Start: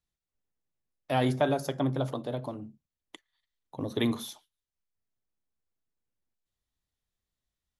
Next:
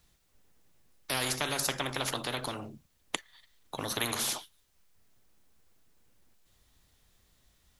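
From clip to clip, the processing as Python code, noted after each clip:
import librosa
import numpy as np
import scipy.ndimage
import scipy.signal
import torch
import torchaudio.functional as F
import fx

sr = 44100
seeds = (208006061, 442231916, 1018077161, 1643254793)

y = fx.spectral_comp(x, sr, ratio=4.0)
y = F.gain(torch.from_numpy(y), 2.5).numpy()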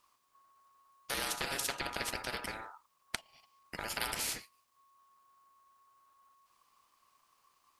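y = x * np.sin(2.0 * np.pi * 1100.0 * np.arange(len(x)) / sr)
y = F.gain(torch.from_numpy(y), -1.5).numpy()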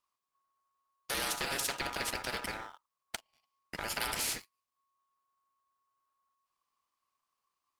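y = fx.leveller(x, sr, passes=3)
y = F.gain(torch.from_numpy(y), -8.5).numpy()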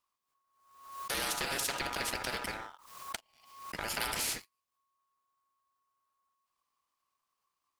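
y = fx.pre_swell(x, sr, db_per_s=73.0)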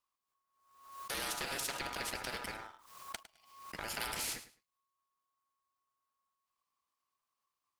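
y = fx.echo_feedback(x, sr, ms=105, feedback_pct=18, wet_db=-15.0)
y = F.gain(torch.from_numpy(y), -4.5).numpy()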